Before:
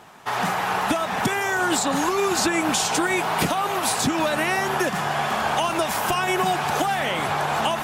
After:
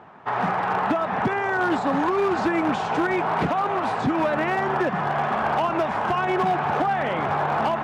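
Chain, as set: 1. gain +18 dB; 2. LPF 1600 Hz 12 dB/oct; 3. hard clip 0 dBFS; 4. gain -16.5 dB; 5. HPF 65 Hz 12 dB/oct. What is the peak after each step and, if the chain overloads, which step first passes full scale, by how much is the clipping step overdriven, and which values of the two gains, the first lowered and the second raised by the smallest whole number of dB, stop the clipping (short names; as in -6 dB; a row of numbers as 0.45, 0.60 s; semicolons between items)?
+8.0, +7.0, 0.0, -16.5, -13.5 dBFS; step 1, 7.0 dB; step 1 +11 dB, step 4 -9.5 dB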